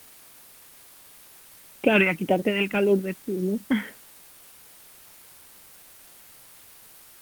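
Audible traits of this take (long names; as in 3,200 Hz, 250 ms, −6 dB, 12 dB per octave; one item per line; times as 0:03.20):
phaser sweep stages 2, 1.8 Hz, lowest notch 510–1,400 Hz
tremolo triangle 6.2 Hz, depth 45%
a quantiser's noise floor 10 bits, dither triangular
Opus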